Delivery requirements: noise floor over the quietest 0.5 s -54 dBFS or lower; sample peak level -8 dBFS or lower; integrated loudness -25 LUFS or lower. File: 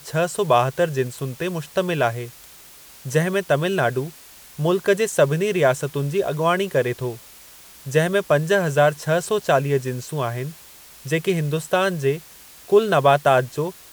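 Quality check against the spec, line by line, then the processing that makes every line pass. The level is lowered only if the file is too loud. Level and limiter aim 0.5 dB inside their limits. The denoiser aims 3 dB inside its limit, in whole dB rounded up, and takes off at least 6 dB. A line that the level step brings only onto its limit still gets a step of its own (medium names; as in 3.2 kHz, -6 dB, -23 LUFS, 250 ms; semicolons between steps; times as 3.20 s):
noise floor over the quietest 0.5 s -45 dBFS: fail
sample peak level -4.5 dBFS: fail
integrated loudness -21.0 LUFS: fail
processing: noise reduction 8 dB, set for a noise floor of -45 dBFS; trim -4.5 dB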